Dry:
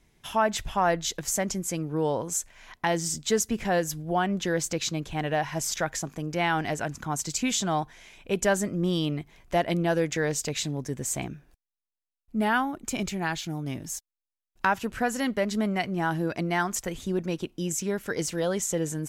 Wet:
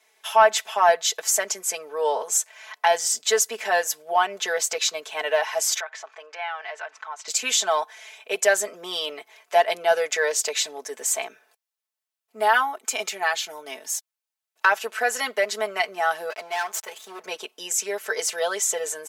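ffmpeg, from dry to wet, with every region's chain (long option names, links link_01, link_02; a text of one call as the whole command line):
ffmpeg -i in.wav -filter_complex "[0:a]asettb=1/sr,asplit=3[link_01][link_02][link_03];[link_01]atrim=end=5.804[link_04];[link_02]atrim=start=5.8:end=7.28,asetpts=PTS-STARTPTS,afade=type=in:duration=0.004:curve=qsin,afade=type=out:start_time=1.476:duration=0.004:curve=qsin,highpass=780,lowpass=2900,acompressor=threshold=-41dB:ratio=2:attack=3.2:release=140:knee=1:detection=peak[link_05];[link_03]atrim=start=7.276[link_06];[link_04][link_05]acrossfade=duration=0.004:curve1=hsin:curve2=qsin[link_07];[link_07][link_06]acrossfade=duration=0.004:curve1=qsin:curve2=hsin,asettb=1/sr,asplit=3[link_08][link_09][link_10];[link_08]atrim=end=16.304[link_11];[link_09]atrim=start=16.3:end=17.24,asetpts=PTS-STARTPTS,afade=type=in:duration=0.004:curve=qsin,afade=type=out:start_time=0.936:duration=0.004:curve=qsin,aeval=exprs='(tanh(28.2*val(0)+0.6)-tanh(0.6))/28.2':channel_layout=same,aeval=exprs='sgn(val(0))*max(abs(val(0))-0.00266,0)':channel_layout=same[link_12];[link_10]atrim=start=17.236[link_13];[link_11][link_12]acrossfade=duration=0.004:curve1=hsin:curve2=qsin[link_14];[link_14][link_13]acrossfade=duration=0.004:curve1=qsin:curve2=hsin,highpass=frequency=520:width=0.5412,highpass=frequency=520:width=1.3066,aecho=1:1:4.6:0.93,acontrast=50,volume=-1.5dB" out.wav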